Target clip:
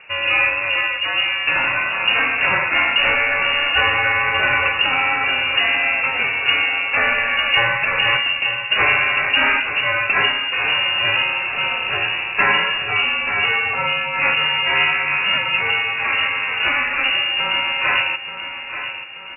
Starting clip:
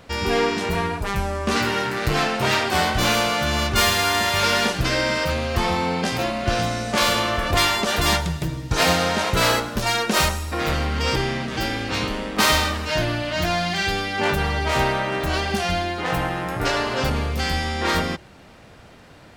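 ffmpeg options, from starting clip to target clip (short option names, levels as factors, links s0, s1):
-af "aecho=1:1:882|1764|2646|3528|4410|5292:0.299|0.152|0.0776|0.0396|0.0202|0.0103,lowpass=f=2500:t=q:w=0.5098,lowpass=f=2500:t=q:w=0.6013,lowpass=f=2500:t=q:w=0.9,lowpass=f=2500:t=q:w=2.563,afreqshift=-2900,volume=1.5"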